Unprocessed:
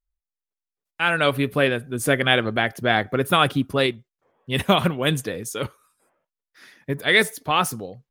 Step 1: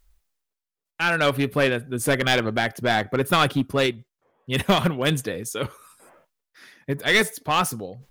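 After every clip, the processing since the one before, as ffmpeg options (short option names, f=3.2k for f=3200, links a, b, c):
-af "areverse,acompressor=mode=upward:threshold=-39dB:ratio=2.5,areverse,aeval=exprs='clip(val(0),-1,0.178)':c=same"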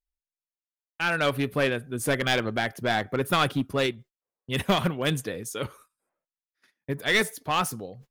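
-af "agate=range=-26dB:threshold=-45dB:ratio=16:detection=peak,volume=-4dB"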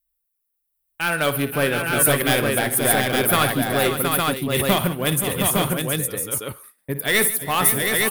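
-filter_complex "[0:a]aexciter=amount=7.1:drive=4.5:freq=8.8k,asplit=2[a][b];[b]aecho=0:1:57|147|334|526|719|860:0.224|0.141|0.119|0.299|0.562|0.708[c];[a][c]amix=inputs=2:normalize=0,volume=3dB"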